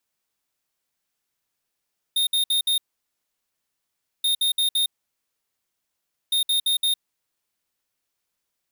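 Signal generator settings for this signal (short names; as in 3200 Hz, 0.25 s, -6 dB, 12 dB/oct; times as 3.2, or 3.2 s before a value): beep pattern square 3680 Hz, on 0.11 s, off 0.06 s, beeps 4, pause 1.46 s, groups 3, -21 dBFS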